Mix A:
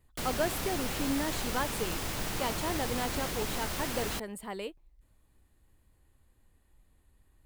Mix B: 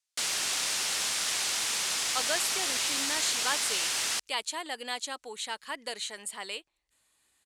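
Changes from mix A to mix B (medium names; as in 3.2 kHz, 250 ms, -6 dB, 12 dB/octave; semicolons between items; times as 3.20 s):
speech: entry +1.90 s; master: add frequency weighting ITU-R 468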